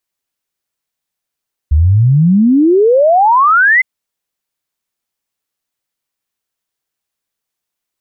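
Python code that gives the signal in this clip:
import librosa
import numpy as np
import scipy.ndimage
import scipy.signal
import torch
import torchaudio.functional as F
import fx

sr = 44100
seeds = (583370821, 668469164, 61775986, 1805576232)

y = fx.ess(sr, length_s=2.11, from_hz=70.0, to_hz=2100.0, level_db=-5.5)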